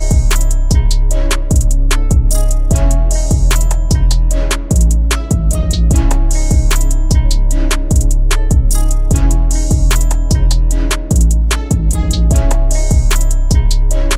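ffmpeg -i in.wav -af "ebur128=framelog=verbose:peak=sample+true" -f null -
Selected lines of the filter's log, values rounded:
Integrated loudness:
  I:         -14.1 LUFS
  Threshold: -24.0 LUFS
Loudness range:
  LRA:         0.5 LU
  Threshold: -34.0 LUFS
  LRA low:   -14.3 LUFS
  LRA high:  -13.8 LUFS
Sample peak:
  Peak:       -1.7 dBFS
True peak:
  Peak:       -1.6 dBFS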